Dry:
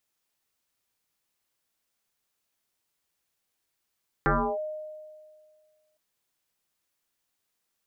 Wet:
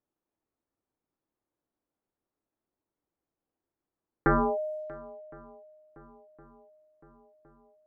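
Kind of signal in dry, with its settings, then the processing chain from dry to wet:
two-operator FM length 1.71 s, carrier 616 Hz, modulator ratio 0.31, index 5.6, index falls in 0.32 s linear, decay 1.92 s, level −18.5 dB
feedback echo with a long and a short gap by turns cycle 1,063 ms, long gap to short 1.5 to 1, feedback 57%, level −23 dB
low-pass that shuts in the quiet parts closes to 870 Hz, open at −30.5 dBFS
parametric band 310 Hz +7.5 dB 0.63 octaves

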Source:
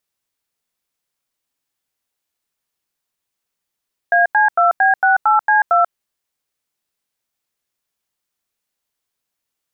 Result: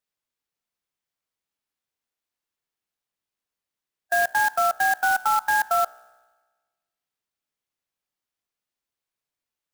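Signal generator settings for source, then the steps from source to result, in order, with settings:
touch tones "AC2B68C2", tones 138 ms, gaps 89 ms, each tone −12.5 dBFS
tuned comb filter 62 Hz, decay 1.3 s, harmonics all, mix 60%
harmonic and percussive parts rebalanced percussive −3 dB
converter with an unsteady clock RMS 0.03 ms

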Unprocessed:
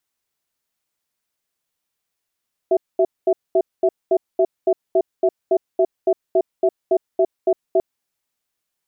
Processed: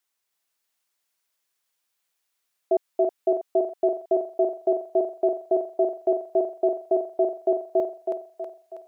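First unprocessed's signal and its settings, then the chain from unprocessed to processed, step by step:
tone pair in a cadence 377 Hz, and 660 Hz, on 0.06 s, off 0.22 s, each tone −15 dBFS 5.09 s
low-shelf EQ 340 Hz −10.5 dB
on a send: feedback echo with a high-pass in the loop 322 ms, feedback 62%, high-pass 460 Hz, level −3 dB

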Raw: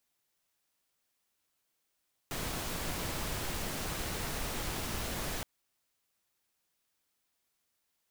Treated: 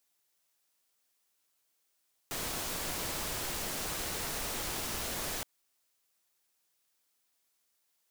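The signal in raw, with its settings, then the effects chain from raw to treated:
noise pink, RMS −36.5 dBFS 3.12 s
bass and treble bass −6 dB, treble +4 dB

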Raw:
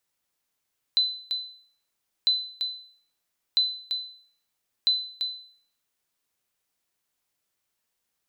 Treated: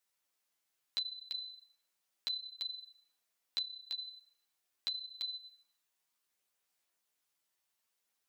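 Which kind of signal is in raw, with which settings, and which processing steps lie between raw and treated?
ping with an echo 4,020 Hz, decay 0.54 s, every 1.30 s, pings 4, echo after 0.34 s, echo −7 dB −15 dBFS
low-shelf EQ 230 Hz −11.5 dB
downward compressor, threshold −34 dBFS
multi-voice chorus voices 2, 0.37 Hz, delay 12 ms, depth 3.1 ms

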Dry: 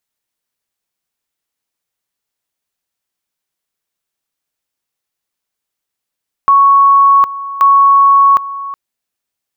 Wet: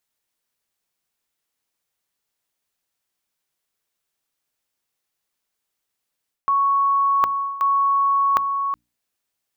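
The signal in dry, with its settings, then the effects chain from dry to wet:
tone at two levels in turn 1,110 Hz −4 dBFS, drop 16 dB, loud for 0.76 s, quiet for 0.37 s, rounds 2
mains-hum notches 60/120/180/240/300 Hz
reversed playback
downward compressor 12 to 1, threshold −17 dBFS
reversed playback

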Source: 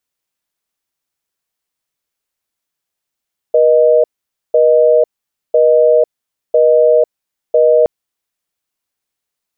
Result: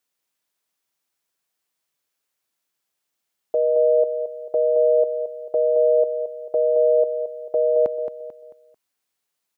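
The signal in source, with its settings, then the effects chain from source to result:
call progress tone busy tone, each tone −9 dBFS 4.32 s
high-pass filter 170 Hz 6 dB per octave
brickwall limiter −13 dBFS
on a send: repeating echo 221 ms, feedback 37%, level −9 dB

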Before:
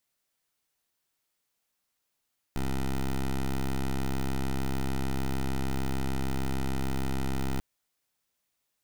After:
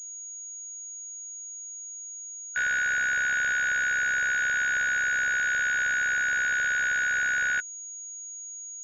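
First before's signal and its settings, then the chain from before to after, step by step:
pulse wave 66.6 Hz, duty 12% −28.5 dBFS 5.04 s
band-splitting scrambler in four parts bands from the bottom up 3142
tilt shelving filter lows −3 dB, about 670 Hz
switching amplifier with a slow clock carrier 6,700 Hz

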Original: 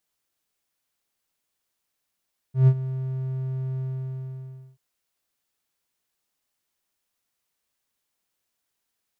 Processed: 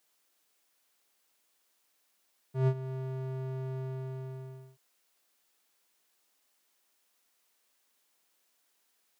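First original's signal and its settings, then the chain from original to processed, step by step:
note with an ADSR envelope triangle 131 Hz, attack 134 ms, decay 62 ms, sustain −15.5 dB, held 1.25 s, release 984 ms −8.5 dBFS
high-pass filter 260 Hz 12 dB per octave
in parallel at +0.5 dB: downward compressor, threshold −43 dBFS

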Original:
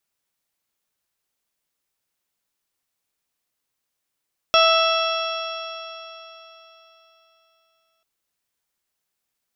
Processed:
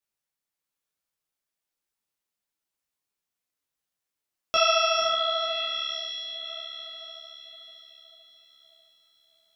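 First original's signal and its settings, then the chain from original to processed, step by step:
stiff-string partials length 3.49 s, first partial 654 Hz, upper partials 0.5/−17/−3.5/−2/−15/−18/−5 dB, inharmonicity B 0.0017, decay 3.62 s, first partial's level −16.5 dB
speech leveller within 5 dB 2 s
on a send: feedback delay with all-pass diffusion 543 ms, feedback 51%, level −6 dB
on the sum: micro pitch shift up and down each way 36 cents

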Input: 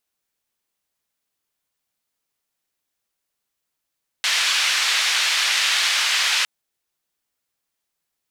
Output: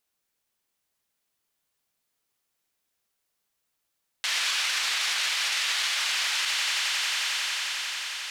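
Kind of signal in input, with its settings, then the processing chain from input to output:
band-limited noise 1,700–3,900 Hz, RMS −20 dBFS 2.21 s
on a send: echo that builds up and dies away 89 ms, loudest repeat 8, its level −17.5 dB
on the sum: brickwall limiter −18 dBFS

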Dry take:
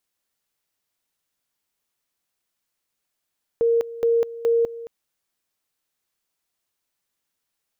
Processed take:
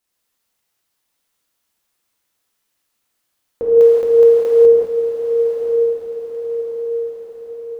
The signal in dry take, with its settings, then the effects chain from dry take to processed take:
tone at two levels in turn 464 Hz −15.5 dBFS, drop 16.5 dB, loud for 0.20 s, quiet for 0.22 s, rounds 3
on a send: feedback delay with all-pass diffusion 1,092 ms, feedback 51%, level −7 dB
on the sum: reverb whose tail is shaped and stops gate 220 ms flat, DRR −6.5 dB

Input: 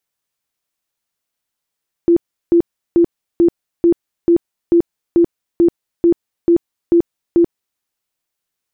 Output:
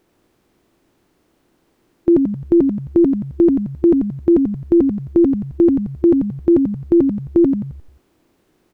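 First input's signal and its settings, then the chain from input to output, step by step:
tone bursts 341 Hz, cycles 29, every 0.44 s, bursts 13, −7 dBFS
compressor on every frequency bin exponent 0.6
on a send: echo with shifted repeats 88 ms, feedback 46%, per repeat −68 Hz, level −5 dB

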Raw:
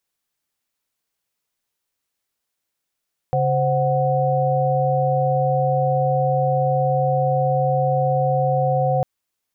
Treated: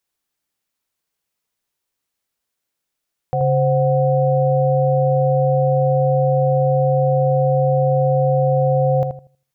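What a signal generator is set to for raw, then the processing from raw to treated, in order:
held notes C#3/C5/F#5 sine, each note −20.5 dBFS 5.70 s
feedback echo with a low-pass in the loop 80 ms, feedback 27%, low-pass 840 Hz, level −4 dB

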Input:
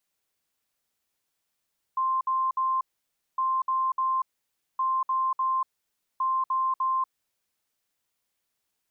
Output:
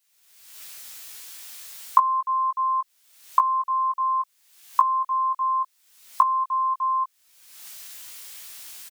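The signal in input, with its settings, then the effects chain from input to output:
beeps in groups sine 1,050 Hz, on 0.24 s, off 0.06 s, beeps 3, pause 0.57 s, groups 4, −22.5 dBFS
camcorder AGC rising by 49 dB per second
tilt shelving filter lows −8 dB, about 1,100 Hz
double-tracking delay 18 ms −5.5 dB

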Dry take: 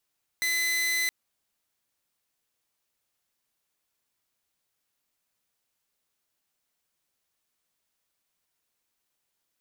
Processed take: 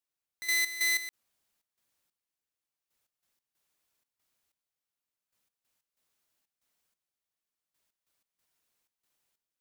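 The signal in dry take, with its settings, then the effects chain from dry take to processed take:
tone saw 2,020 Hz −22 dBFS 0.67 s
gate pattern "...x.x.xxx.xx.." 93 BPM −12 dB

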